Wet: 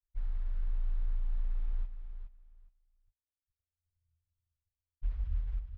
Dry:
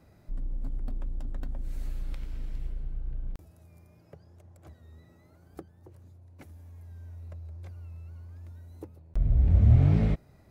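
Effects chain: rattling part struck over -31 dBFS, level -30 dBFS; inverse Chebyshev band-stop 210–2300 Hz, stop band 80 dB; low-pass opened by the level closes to 510 Hz, open at -34 dBFS; expander -59 dBFS; bell 220 Hz -13 dB 0.61 oct; compressor 10:1, threshold -33 dBFS, peak gain reduction 10 dB; low-pass sweep 1500 Hz -> 350 Hz, 4.92–6.62; short-mantissa float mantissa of 4-bit; plain phase-vocoder stretch 0.55×; air absorption 300 m; on a send: feedback echo 0.418 s, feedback 18%, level -9.5 dB; on the sum: gain +7.5 dB

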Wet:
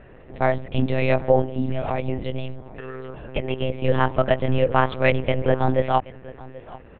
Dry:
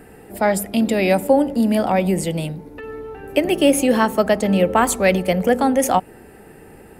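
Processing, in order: 1.4–3.85 compressor 10:1, threshold -18 dBFS, peak gain reduction 9.5 dB; echo 0.78 s -20 dB; monotone LPC vocoder at 8 kHz 130 Hz; gain -2.5 dB

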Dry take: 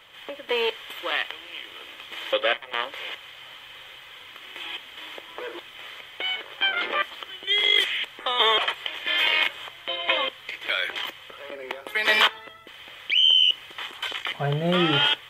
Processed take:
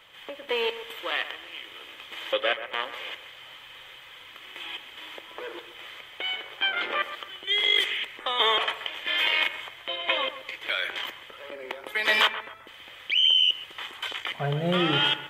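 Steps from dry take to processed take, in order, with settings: analogue delay 0.131 s, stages 2048, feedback 34%, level -12 dB; gain -2.5 dB

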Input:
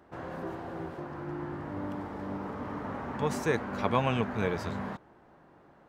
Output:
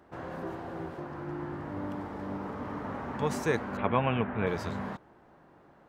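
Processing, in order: 3.77–4.47 steep low-pass 3100 Hz 36 dB/oct

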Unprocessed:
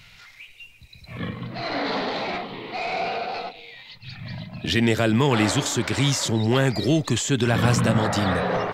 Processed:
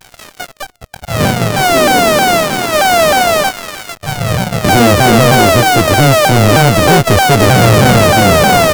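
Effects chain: sample sorter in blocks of 64 samples; sample leveller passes 5; shaped vibrato saw down 3.2 Hz, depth 250 cents; gain +2.5 dB

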